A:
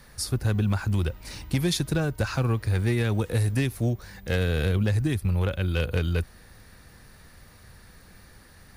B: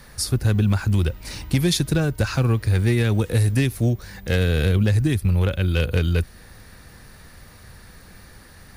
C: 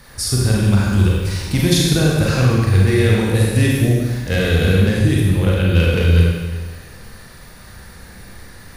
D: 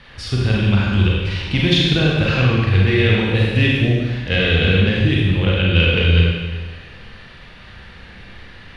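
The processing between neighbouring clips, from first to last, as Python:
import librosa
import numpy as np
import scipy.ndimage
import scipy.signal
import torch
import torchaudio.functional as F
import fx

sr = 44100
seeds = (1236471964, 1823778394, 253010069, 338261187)

y1 = fx.dynamic_eq(x, sr, hz=910.0, q=0.87, threshold_db=-46.0, ratio=4.0, max_db=-4)
y1 = y1 * 10.0 ** (5.5 / 20.0)
y2 = fx.rev_schroeder(y1, sr, rt60_s=1.4, comb_ms=32, drr_db=-4.0)
y2 = y2 * 10.0 ** (1.0 / 20.0)
y3 = fx.lowpass_res(y2, sr, hz=3000.0, q=3.6)
y3 = y3 * 10.0 ** (-1.5 / 20.0)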